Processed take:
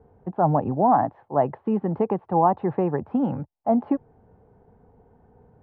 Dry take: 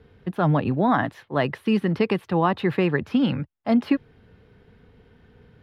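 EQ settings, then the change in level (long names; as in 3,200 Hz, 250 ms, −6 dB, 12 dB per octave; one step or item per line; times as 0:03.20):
low-pass with resonance 810 Hz, resonance Q 3.6
−3.5 dB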